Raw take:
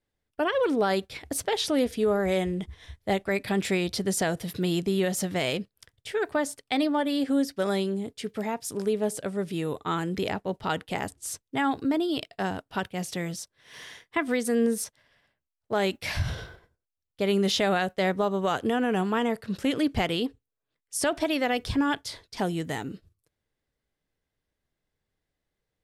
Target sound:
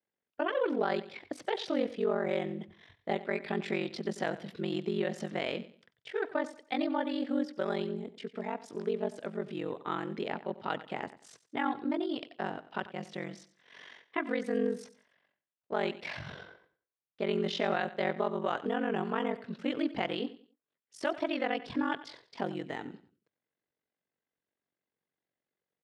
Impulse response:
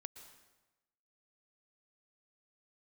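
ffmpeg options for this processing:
-filter_complex "[0:a]aeval=exprs='val(0)*sin(2*PI*23*n/s)':channel_layout=same,highpass=210,lowpass=3200,asplit=2[link_01][link_02];[link_02]aecho=0:1:93|186|279:0.158|0.046|0.0133[link_03];[link_01][link_03]amix=inputs=2:normalize=0,volume=-2.5dB"

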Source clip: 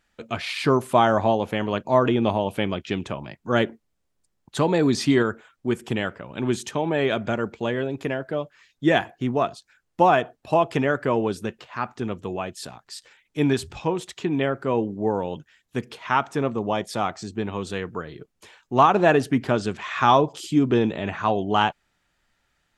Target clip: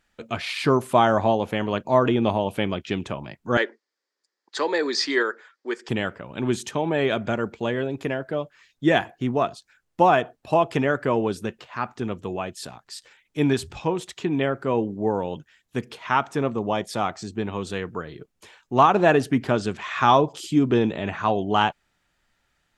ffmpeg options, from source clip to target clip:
ffmpeg -i in.wav -filter_complex "[0:a]asettb=1/sr,asplit=3[link_01][link_02][link_03];[link_01]atrim=end=3.574[link_04];[link_02]atrim=start=3.57:end=5.89,asetpts=PTS-STARTPTS,afade=type=in:duration=0.004:curve=qsin,afade=type=out:start_time=2.316:duration=0.004:curve=qsin,highpass=frequency=370:width=0.5412,highpass=frequency=370:width=1.3066,equalizer=frequency=690:width_type=q:width=4:gain=-8,equalizer=frequency=1800:width_type=q:width=4:gain=8,equalizer=frequency=2800:width_type=q:width=4:gain=-5,equalizer=frequency=4800:width_type=q:width=4:gain=9,lowpass=frequency=7100:width=0.5412,lowpass=frequency=7100:width=1.3066[link_05];[link_03]atrim=start=5.886[link_06];[link_04][link_05]acrossfade=duration=0.004:curve1=hsin:curve2=qsin[link_07];[link_07][link_06]acrossfade=duration=0.004:curve1=qsin:curve2=hsin" out.wav

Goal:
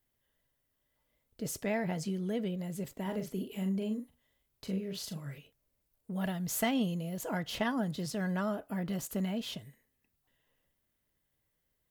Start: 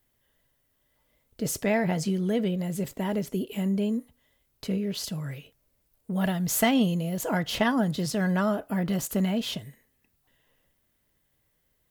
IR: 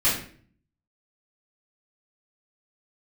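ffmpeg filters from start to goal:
-filter_complex "[0:a]asettb=1/sr,asplit=3[link_01][link_02][link_03];[link_01]atrim=end=3.024[link_04];[link_02]atrim=start=3.02:end=5.38,asetpts=PTS-STARTPTS,afade=type=in:duration=0.004:curve=qsin,afade=type=out:start_time=2.356:duration=0.004:curve=qsin,asplit=2[link_05][link_06];[link_06]adelay=42,volume=-7dB[link_07];[link_05][link_07]amix=inputs=2:normalize=0,atrim=end_sample=104076[link_08];[link_03]atrim=start=5.376[link_09];[link_04][link_08]acrossfade=duration=0.004:curve1=hsin:curve2=qsin[link_10];[link_10][link_09]acrossfade=duration=0.004:curve1=qsin:curve2=hsin,volume=-8dB"

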